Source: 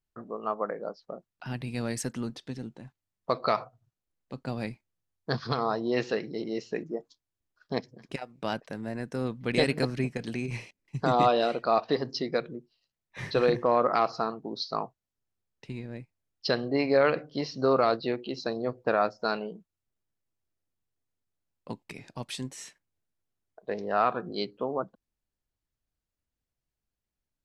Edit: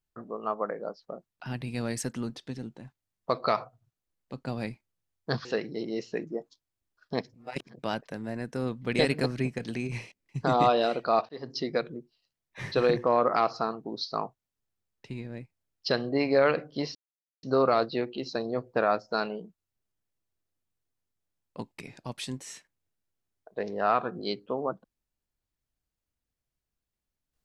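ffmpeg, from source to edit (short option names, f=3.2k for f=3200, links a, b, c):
-filter_complex "[0:a]asplit=6[a][b][c][d][e][f];[a]atrim=end=5.452[g];[b]atrim=start=6.038:end=7.932[h];[c]atrim=start=7.928:end=8.382,asetpts=PTS-STARTPTS,areverse[i];[d]atrim=start=8.378:end=11.88,asetpts=PTS-STARTPTS,afade=t=out:st=3.498:d=0.004:c=hsin[j];[e]atrim=start=11.88:end=17.54,asetpts=PTS-STARTPTS,afade=t=in:d=0.32,afade=t=out:st=5.656:d=0.004:c=hsin,apad=pad_dur=0.48[k];[f]atrim=start=17.54,asetpts=PTS-STARTPTS,afade=t=in:d=0.004:c=hsin[l];[g][h]acrossfade=d=0.004:c1=hsin:c2=hsin[m];[m][i]acrossfade=d=0.004:c1=hsin:c2=hsin[n];[j][k][l]concat=n=3:v=0:a=1[o];[n][o]acrossfade=d=0.004:c1=hsin:c2=hsin"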